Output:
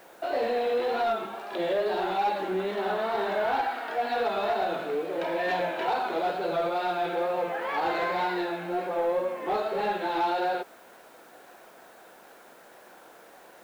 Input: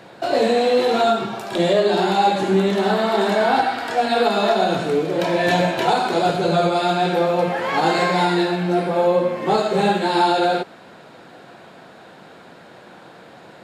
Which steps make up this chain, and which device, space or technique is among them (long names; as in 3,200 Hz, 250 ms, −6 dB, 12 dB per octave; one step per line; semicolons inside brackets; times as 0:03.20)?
tape answering machine (band-pass filter 370–2,900 Hz; soft clipping −12 dBFS, distortion −20 dB; tape wow and flutter; white noise bed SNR 32 dB)
level −7 dB